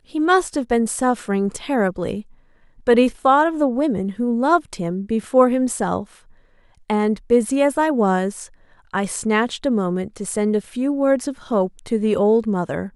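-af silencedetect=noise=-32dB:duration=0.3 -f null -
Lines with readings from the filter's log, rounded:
silence_start: 2.21
silence_end: 2.87 | silence_duration: 0.66
silence_start: 6.04
silence_end: 6.90 | silence_duration: 0.86
silence_start: 8.46
silence_end: 8.94 | silence_duration: 0.47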